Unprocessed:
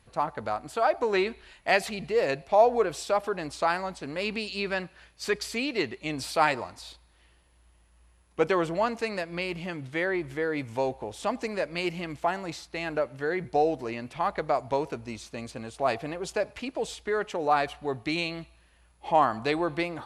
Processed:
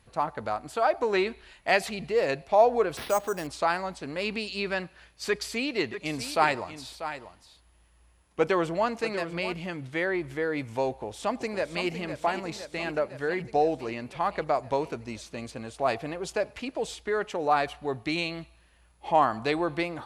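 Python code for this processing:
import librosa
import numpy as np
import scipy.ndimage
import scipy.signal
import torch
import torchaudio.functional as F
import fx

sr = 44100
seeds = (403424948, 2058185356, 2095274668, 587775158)

y = fx.resample_bad(x, sr, factor=6, down='none', up='hold', at=(2.97, 3.47))
y = fx.echo_single(y, sr, ms=641, db=-11.5, at=(5.92, 9.53), fade=0.02)
y = fx.echo_throw(y, sr, start_s=10.89, length_s=1.0, ms=510, feedback_pct=70, wet_db=-9.5)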